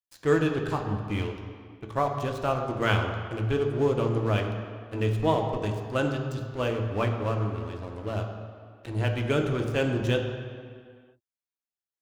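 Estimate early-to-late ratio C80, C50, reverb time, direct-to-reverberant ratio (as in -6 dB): 6.5 dB, 5.5 dB, not exponential, 2.5 dB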